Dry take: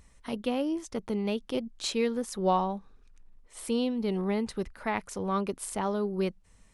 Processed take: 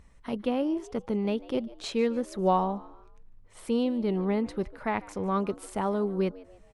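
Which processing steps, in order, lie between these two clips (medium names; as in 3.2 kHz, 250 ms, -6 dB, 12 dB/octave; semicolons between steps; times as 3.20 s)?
treble shelf 3.6 kHz -11.5 dB; on a send: frequency-shifting echo 147 ms, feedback 40%, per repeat +84 Hz, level -20.5 dB; on the sum: trim +2 dB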